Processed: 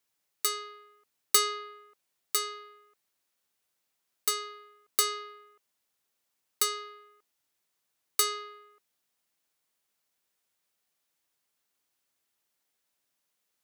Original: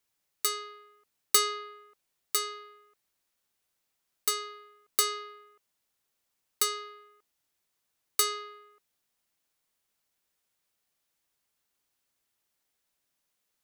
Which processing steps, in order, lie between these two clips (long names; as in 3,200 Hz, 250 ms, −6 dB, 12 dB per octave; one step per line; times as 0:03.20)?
low-shelf EQ 77 Hz −11.5 dB